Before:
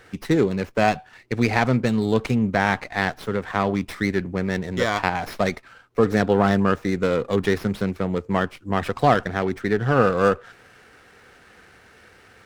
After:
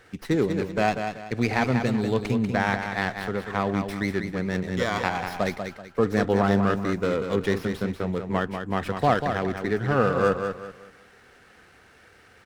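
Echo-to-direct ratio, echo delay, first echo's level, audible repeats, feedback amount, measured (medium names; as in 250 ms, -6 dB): -6.5 dB, 191 ms, -7.0 dB, 3, 32%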